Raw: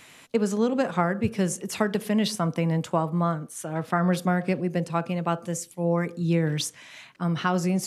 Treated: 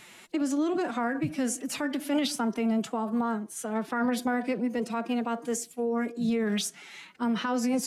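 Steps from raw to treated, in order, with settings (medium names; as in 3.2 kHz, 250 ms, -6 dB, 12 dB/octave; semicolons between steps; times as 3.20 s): peak limiter -19 dBFS, peak gain reduction 10 dB; formant-preserving pitch shift +5.5 st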